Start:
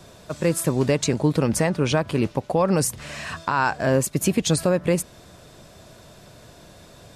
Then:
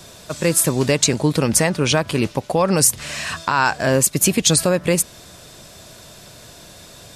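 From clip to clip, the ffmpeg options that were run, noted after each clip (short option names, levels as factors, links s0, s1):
-af "highshelf=f=2200:g=9.5,volume=1.26"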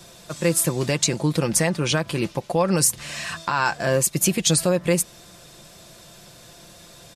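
-af "aecho=1:1:5.8:0.44,volume=0.562"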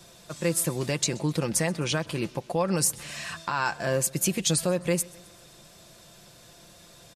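-af "aecho=1:1:129|258|387|516:0.0668|0.0361|0.0195|0.0105,volume=0.531"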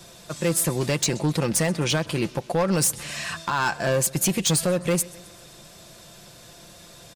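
-af "volume=12.6,asoftclip=hard,volume=0.0794,volume=1.78"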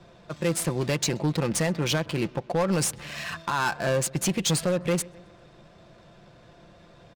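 -af "adynamicsmooth=sensitivity=6.5:basefreq=1900,volume=0.794"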